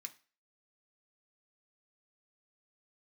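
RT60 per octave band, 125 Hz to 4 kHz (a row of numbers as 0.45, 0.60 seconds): 0.30, 0.35, 0.35, 0.35, 0.40, 0.35 seconds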